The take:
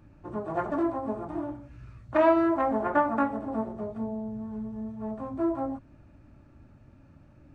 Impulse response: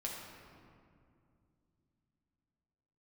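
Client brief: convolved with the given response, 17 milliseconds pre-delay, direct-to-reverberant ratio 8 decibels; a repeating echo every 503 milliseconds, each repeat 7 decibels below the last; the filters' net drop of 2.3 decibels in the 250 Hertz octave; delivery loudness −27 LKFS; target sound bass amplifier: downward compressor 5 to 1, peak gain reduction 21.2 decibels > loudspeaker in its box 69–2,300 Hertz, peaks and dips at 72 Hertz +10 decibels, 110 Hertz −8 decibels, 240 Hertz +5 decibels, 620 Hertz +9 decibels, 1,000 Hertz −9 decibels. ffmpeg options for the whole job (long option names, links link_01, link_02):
-filter_complex "[0:a]equalizer=frequency=250:width_type=o:gain=-5.5,aecho=1:1:503|1006|1509|2012|2515:0.447|0.201|0.0905|0.0407|0.0183,asplit=2[link_01][link_02];[1:a]atrim=start_sample=2205,adelay=17[link_03];[link_02][link_03]afir=irnorm=-1:irlink=0,volume=-8.5dB[link_04];[link_01][link_04]amix=inputs=2:normalize=0,acompressor=threshold=-41dB:ratio=5,highpass=frequency=69:width=0.5412,highpass=frequency=69:width=1.3066,equalizer=frequency=72:width_type=q:width=4:gain=10,equalizer=frequency=110:width_type=q:width=4:gain=-8,equalizer=frequency=240:width_type=q:width=4:gain=5,equalizer=frequency=620:width_type=q:width=4:gain=9,equalizer=frequency=1000:width_type=q:width=4:gain=-9,lowpass=frequency=2300:width=0.5412,lowpass=frequency=2300:width=1.3066,volume=13.5dB"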